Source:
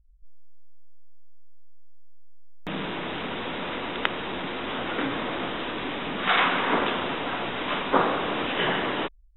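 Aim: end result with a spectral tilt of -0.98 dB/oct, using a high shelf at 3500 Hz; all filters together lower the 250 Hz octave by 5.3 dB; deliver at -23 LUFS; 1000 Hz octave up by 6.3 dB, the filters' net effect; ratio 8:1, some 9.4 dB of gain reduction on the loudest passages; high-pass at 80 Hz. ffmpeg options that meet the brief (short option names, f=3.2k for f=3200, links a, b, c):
-af "highpass=80,equalizer=f=250:t=o:g=-7.5,equalizer=f=1k:t=o:g=8.5,highshelf=f=3.5k:g=-5,acompressor=threshold=-22dB:ratio=8,volume=5dB"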